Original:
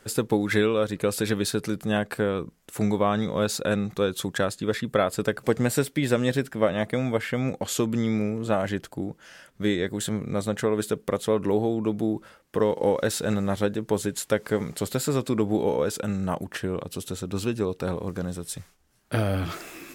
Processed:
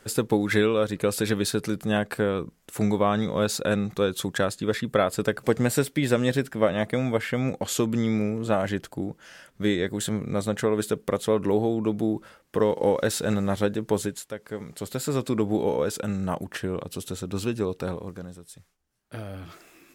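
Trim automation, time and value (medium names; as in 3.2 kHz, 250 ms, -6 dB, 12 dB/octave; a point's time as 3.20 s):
14.03 s +0.5 dB
14.33 s -12 dB
15.20 s -0.5 dB
17.80 s -0.5 dB
18.45 s -12 dB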